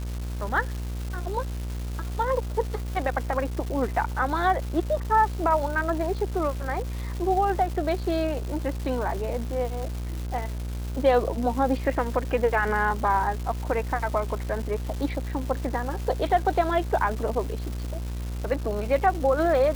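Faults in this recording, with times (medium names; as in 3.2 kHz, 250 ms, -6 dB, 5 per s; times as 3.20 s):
buzz 60 Hz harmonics 27 -31 dBFS
crackle 570 per s -33 dBFS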